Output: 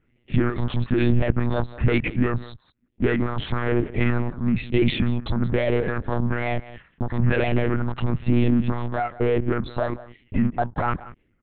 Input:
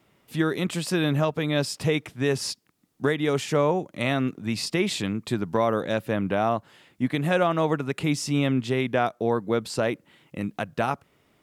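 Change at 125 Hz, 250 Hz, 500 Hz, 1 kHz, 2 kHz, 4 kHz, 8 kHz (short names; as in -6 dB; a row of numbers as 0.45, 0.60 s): +6.0 dB, +3.0 dB, -0.5 dB, -1.0 dB, +0.5 dB, -4.5 dB, under -40 dB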